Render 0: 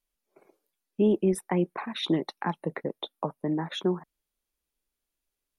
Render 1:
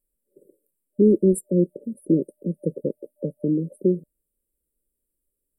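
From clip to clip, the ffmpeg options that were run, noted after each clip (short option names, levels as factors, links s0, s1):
-af "afftfilt=real='re*(1-between(b*sr/4096,600,7400))':imag='im*(1-between(b*sr/4096,600,7400))':win_size=4096:overlap=0.75,volume=2.11"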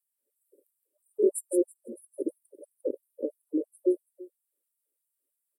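-af "aecho=1:1:165|330|495:0.562|0.101|0.0182,afftfilt=real='re*gte(b*sr/1024,220*pow(6800/220,0.5+0.5*sin(2*PI*3*pts/sr)))':imag='im*gte(b*sr/1024,220*pow(6800/220,0.5+0.5*sin(2*PI*3*pts/sr)))':win_size=1024:overlap=0.75,volume=0.794"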